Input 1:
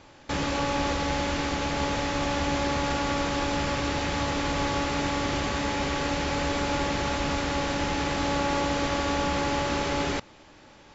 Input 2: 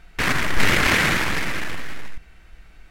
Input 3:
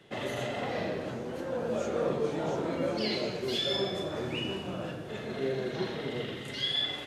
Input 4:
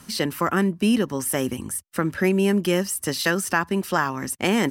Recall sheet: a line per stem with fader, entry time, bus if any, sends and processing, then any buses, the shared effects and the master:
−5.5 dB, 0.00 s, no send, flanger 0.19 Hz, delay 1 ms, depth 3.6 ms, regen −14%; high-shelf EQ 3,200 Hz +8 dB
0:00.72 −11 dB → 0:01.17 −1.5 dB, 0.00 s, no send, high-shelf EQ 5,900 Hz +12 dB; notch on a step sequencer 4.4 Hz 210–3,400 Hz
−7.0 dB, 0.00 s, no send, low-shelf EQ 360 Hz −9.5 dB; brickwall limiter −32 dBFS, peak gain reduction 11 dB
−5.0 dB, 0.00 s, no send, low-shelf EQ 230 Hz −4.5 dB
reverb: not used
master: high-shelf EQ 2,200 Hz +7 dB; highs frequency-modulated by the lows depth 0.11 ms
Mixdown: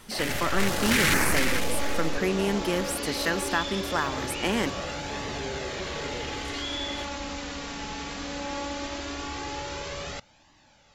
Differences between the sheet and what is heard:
stem 3 −7.0 dB → +4.0 dB
master: missing high-shelf EQ 2,200 Hz +7 dB

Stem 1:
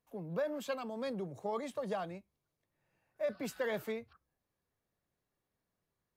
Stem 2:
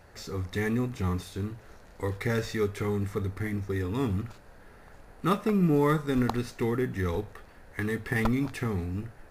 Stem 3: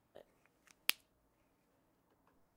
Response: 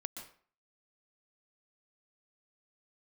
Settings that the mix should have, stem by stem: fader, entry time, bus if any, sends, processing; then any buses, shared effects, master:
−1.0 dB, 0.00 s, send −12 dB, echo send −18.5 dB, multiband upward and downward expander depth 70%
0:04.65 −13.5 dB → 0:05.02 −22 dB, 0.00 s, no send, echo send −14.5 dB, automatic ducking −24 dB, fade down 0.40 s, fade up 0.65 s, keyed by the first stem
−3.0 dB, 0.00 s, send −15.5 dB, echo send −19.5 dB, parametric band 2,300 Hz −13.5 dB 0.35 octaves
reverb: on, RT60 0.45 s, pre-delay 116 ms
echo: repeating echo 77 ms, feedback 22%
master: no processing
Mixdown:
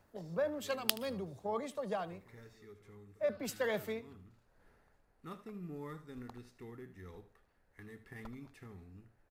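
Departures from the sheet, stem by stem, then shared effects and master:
stem 1: send off
stem 3 −3.0 dB → +3.0 dB

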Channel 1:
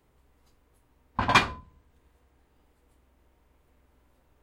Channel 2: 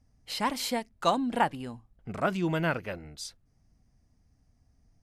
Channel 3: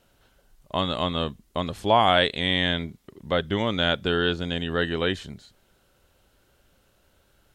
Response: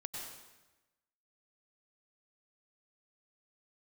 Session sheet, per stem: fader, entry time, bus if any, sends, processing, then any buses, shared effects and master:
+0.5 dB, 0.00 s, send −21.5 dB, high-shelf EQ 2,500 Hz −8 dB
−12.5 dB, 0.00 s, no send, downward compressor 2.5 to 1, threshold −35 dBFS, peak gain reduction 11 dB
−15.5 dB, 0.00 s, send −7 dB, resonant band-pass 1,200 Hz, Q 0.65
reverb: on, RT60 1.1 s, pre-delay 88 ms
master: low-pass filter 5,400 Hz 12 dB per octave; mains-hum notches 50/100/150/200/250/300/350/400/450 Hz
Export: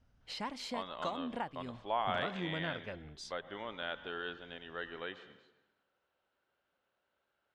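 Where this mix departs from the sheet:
stem 1: muted
stem 2 −12.5 dB → −4.5 dB
master: missing mains-hum notches 50/100/150/200/250/300/350/400/450 Hz

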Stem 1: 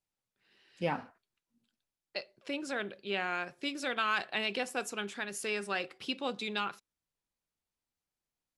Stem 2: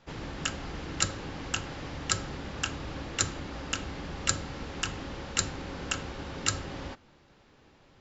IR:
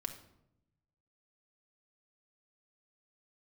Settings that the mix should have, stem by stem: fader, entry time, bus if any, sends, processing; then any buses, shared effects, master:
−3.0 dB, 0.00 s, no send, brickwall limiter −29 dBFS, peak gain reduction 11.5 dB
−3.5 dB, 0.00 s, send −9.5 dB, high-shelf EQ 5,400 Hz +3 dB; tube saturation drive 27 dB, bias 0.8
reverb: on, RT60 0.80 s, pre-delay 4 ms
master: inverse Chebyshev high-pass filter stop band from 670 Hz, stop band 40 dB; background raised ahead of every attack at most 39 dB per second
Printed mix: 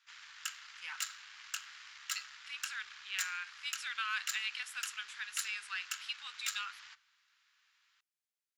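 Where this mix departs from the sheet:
stem 1: missing brickwall limiter −29 dBFS, peak gain reduction 11.5 dB
master: missing background raised ahead of every attack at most 39 dB per second

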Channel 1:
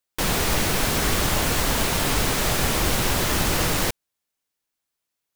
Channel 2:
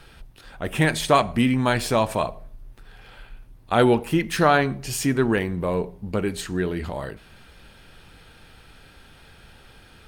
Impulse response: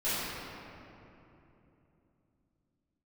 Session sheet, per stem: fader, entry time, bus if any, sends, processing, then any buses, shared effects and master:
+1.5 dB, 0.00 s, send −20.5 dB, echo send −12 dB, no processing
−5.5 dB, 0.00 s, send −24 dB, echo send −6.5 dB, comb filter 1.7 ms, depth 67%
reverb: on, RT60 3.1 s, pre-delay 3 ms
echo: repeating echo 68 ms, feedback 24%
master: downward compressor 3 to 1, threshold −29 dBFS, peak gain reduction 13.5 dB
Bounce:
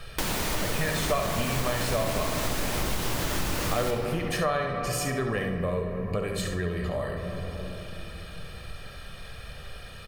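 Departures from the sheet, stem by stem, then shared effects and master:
stem 2 −5.5 dB → +2.0 dB
reverb return +9.0 dB

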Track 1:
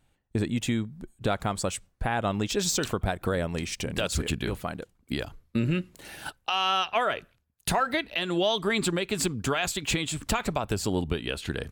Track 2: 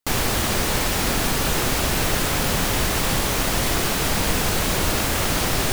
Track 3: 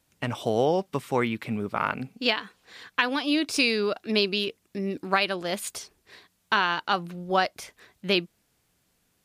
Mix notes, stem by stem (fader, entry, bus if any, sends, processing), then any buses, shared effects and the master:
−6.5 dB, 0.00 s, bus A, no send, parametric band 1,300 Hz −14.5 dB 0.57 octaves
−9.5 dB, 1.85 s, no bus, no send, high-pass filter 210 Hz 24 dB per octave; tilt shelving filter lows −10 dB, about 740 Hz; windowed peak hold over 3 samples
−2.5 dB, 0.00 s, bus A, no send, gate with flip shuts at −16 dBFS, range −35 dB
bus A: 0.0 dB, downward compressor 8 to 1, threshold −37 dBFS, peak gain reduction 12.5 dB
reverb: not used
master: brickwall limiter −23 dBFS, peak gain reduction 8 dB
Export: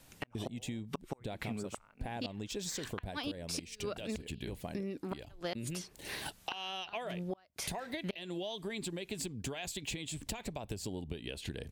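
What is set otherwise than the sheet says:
stem 1 −6.5 dB → +1.5 dB
stem 2: muted
stem 3 −2.5 dB → +9.0 dB

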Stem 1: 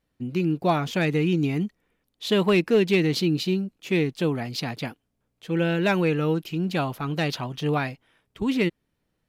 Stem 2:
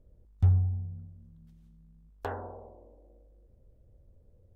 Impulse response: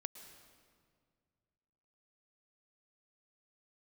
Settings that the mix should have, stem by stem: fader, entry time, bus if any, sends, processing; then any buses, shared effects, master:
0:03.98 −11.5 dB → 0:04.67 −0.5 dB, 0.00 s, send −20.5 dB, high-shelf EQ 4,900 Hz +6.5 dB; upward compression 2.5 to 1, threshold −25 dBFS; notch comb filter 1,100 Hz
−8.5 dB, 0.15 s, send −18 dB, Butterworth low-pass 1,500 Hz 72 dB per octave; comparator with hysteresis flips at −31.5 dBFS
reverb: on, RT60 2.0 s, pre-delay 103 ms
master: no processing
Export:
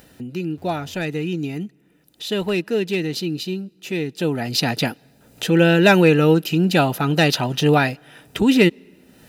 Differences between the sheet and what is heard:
stem 1 −11.5 dB → −2.0 dB
stem 2 −8.5 dB → −15.5 dB

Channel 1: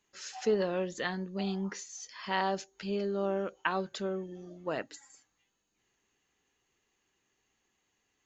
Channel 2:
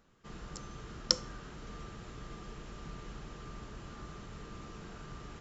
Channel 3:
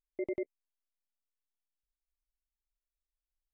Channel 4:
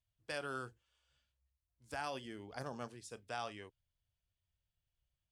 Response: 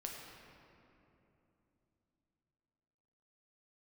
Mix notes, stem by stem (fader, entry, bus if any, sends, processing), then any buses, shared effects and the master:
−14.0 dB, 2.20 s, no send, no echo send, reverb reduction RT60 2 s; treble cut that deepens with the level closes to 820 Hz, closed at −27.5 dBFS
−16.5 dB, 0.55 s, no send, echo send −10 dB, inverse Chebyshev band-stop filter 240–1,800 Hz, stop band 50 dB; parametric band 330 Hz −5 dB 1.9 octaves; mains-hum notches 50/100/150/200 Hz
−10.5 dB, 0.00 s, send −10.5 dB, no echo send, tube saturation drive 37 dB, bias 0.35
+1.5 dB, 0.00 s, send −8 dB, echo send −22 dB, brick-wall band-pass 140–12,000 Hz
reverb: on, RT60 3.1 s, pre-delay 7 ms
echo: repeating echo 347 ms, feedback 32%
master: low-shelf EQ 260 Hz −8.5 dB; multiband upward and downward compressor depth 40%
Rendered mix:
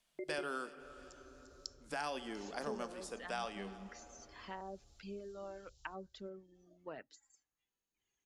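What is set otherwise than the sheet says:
stem 3: missing tube saturation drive 37 dB, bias 0.35
master: missing low-shelf EQ 260 Hz −8.5 dB

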